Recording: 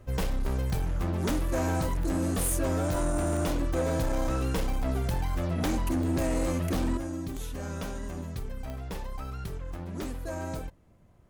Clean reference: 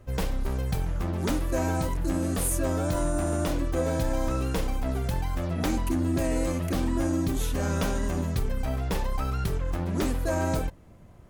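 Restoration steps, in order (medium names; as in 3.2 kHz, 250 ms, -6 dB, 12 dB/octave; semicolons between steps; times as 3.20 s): clip repair -23 dBFS; de-click; trim 0 dB, from 6.97 s +8.5 dB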